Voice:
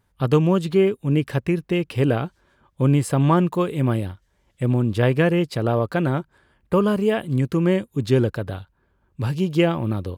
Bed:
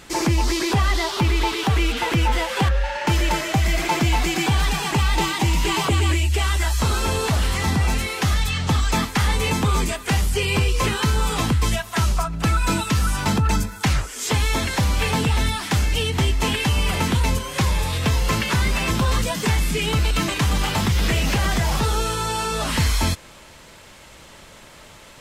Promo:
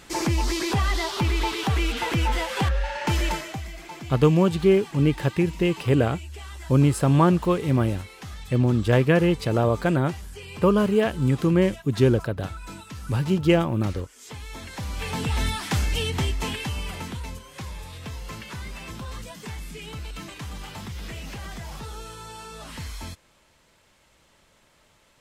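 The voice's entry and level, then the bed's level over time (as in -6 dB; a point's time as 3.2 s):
3.90 s, -0.5 dB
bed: 3.27 s -4 dB
3.72 s -18.5 dB
14.43 s -18.5 dB
15.43 s -4 dB
16.1 s -4 dB
17.36 s -16 dB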